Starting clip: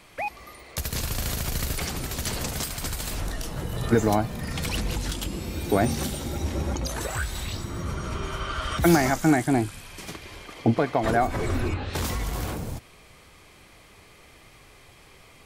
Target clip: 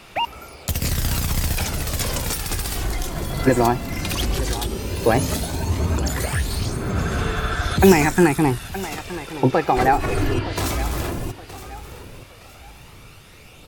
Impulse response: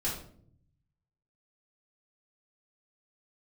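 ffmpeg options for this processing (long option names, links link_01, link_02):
-af "aecho=1:1:1038|2076|3114:0.188|0.0603|0.0193,asetrate=49833,aresample=44100,aphaser=in_gain=1:out_gain=1:delay=3:decay=0.33:speed=0.14:type=sinusoidal,volume=4.5dB"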